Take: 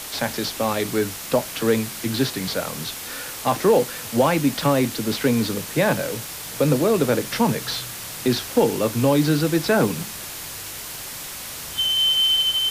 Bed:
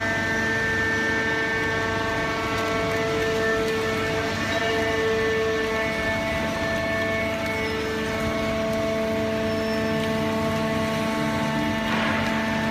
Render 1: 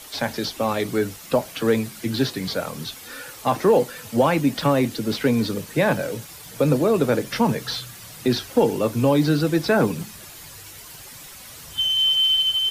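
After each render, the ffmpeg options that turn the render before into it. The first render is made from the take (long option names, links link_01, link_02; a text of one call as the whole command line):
ffmpeg -i in.wav -af "afftdn=noise_reduction=10:noise_floor=-34" out.wav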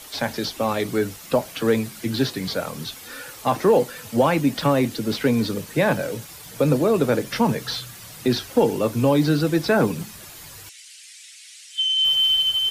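ffmpeg -i in.wav -filter_complex "[0:a]asettb=1/sr,asplit=3[link_01][link_02][link_03];[link_01]atrim=end=10.694[link_04];[link_02]atrim=start=10.69:end=12.05,asetpts=PTS-STARTPTS,afade=type=in:duration=0.004:curve=qsin,afade=type=out:start_time=1.356:duration=0.004:curve=qsin,asuperpass=centerf=4600:order=8:qfactor=0.61[link_05];[link_03]atrim=start=12.046[link_06];[link_04][link_05]acrossfade=duration=0.004:curve1=hsin:curve2=qsin[link_07];[link_07][link_06]acrossfade=duration=0.004:curve1=qsin:curve2=hsin" out.wav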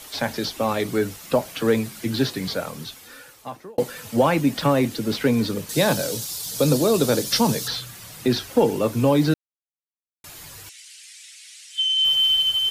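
ffmpeg -i in.wav -filter_complex "[0:a]asettb=1/sr,asplit=3[link_01][link_02][link_03];[link_01]atrim=end=5.694[link_04];[link_02]atrim=start=5.69:end=7.68,asetpts=PTS-STARTPTS,afade=type=in:duration=0.004:curve=qsin,afade=type=out:start_time=1.986:duration=0.004:curve=qsin,highshelf=frequency=3100:width_type=q:width=1.5:gain=10[link_05];[link_03]atrim=start=7.676[link_06];[link_04][link_05]acrossfade=duration=0.004:curve1=hsin:curve2=qsin[link_07];[link_07][link_06]acrossfade=duration=0.004:curve1=qsin:curve2=hsin,asplit=4[link_08][link_09][link_10][link_11];[link_08]atrim=end=3.78,asetpts=PTS-STARTPTS,afade=type=out:start_time=2.44:duration=1.34[link_12];[link_09]atrim=start=3.78:end=9.34,asetpts=PTS-STARTPTS,afade=type=in:duration=0.004:curve=hsin,afade=type=out:start_time=5.556:duration=0.004:curve=hsin[link_13];[link_10]atrim=start=9.34:end=10.24,asetpts=PTS-STARTPTS,volume=0[link_14];[link_11]atrim=start=10.24,asetpts=PTS-STARTPTS,afade=type=in:duration=0.004:curve=hsin[link_15];[link_12][link_13][link_14][link_15]concat=n=4:v=0:a=1" out.wav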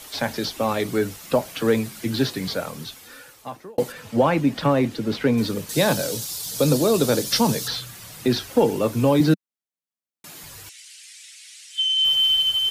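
ffmpeg -i in.wav -filter_complex "[0:a]asettb=1/sr,asplit=3[link_01][link_02][link_03];[link_01]atrim=end=3.924[link_04];[link_02]atrim=start=3.92:end=5.38,asetpts=PTS-STARTPTS,afade=type=in:duration=0.004:curve=qsin,afade=type=out:start_time=1.456:duration=0.004:curve=qsin,highshelf=frequency=5800:gain=-12[link_05];[link_03]atrim=start=5.376[link_06];[link_04][link_05]acrossfade=duration=0.004:curve1=hsin:curve2=qsin[link_07];[link_07][link_06]acrossfade=duration=0.004:curve1=qsin:curve2=hsin,asettb=1/sr,asplit=3[link_08][link_09][link_10];[link_08]atrim=end=9.204[link_11];[link_09]atrim=start=9.2:end=10.43,asetpts=PTS-STARTPTS,afade=type=in:duration=0.004:curve=qsin,afade=type=out:start_time=1.226:duration=0.004:curve=qsin,highpass=frequency=190:width_type=q:width=2.2[link_12];[link_10]atrim=start=10.426[link_13];[link_11][link_12]acrossfade=duration=0.004:curve1=hsin:curve2=qsin[link_14];[link_14][link_13]acrossfade=duration=0.004:curve1=qsin:curve2=hsin" out.wav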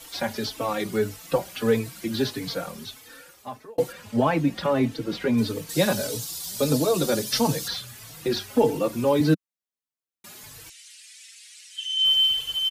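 ffmpeg -i in.wav -filter_complex "[0:a]asplit=2[link_01][link_02];[link_02]adelay=4,afreqshift=1.6[link_03];[link_01][link_03]amix=inputs=2:normalize=1" out.wav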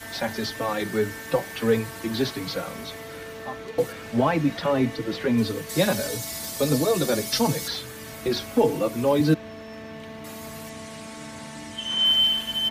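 ffmpeg -i in.wav -i bed.wav -filter_complex "[1:a]volume=-15dB[link_01];[0:a][link_01]amix=inputs=2:normalize=0" out.wav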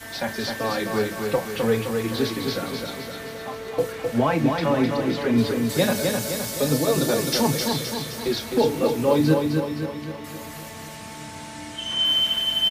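ffmpeg -i in.wav -filter_complex "[0:a]asplit=2[link_01][link_02];[link_02]adelay=34,volume=-11.5dB[link_03];[link_01][link_03]amix=inputs=2:normalize=0,asplit=2[link_04][link_05];[link_05]aecho=0:1:259|518|777|1036|1295|1554|1813:0.596|0.322|0.174|0.0938|0.0506|0.0274|0.0148[link_06];[link_04][link_06]amix=inputs=2:normalize=0" out.wav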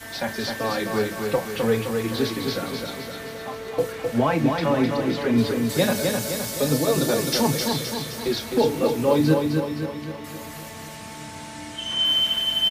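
ffmpeg -i in.wav -af anull out.wav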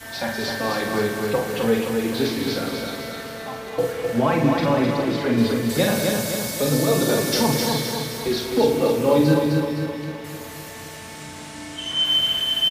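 ffmpeg -i in.wav -filter_complex "[0:a]asplit=2[link_01][link_02];[link_02]adelay=48,volume=-5dB[link_03];[link_01][link_03]amix=inputs=2:normalize=0,aecho=1:1:110.8|192.4:0.251|0.282" out.wav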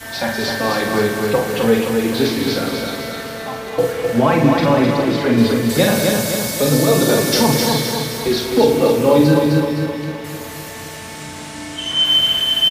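ffmpeg -i in.wav -af "volume=5.5dB,alimiter=limit=-2dB:level=0:latency=1" out.wav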